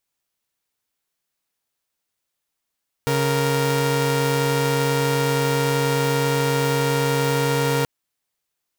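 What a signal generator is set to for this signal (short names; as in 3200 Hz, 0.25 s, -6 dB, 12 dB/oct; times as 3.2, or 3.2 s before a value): chord C#3/A#4 saw, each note -18.5 dBFS 4.78 s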